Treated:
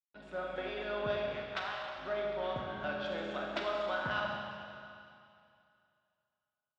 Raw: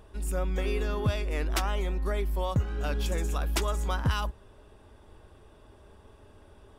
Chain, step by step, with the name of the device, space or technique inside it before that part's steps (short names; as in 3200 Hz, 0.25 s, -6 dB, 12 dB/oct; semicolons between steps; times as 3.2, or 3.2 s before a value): 1.32–1.97 HPF 1000 Hz -> 480 Hz 24 dB/oct; blown loudspeaker (crossover distortion -41 dBFS; speaker cabinet 220–4000 Hz, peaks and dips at 430 Hz -6 dB, 630 Hz +10 dB, 1500 Hz +8 dB, 3600 Hz +4 dB); Schroeder reverb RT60 2.5 s, combs from 30 ms, DRR -1 dB; gain -7.5 dB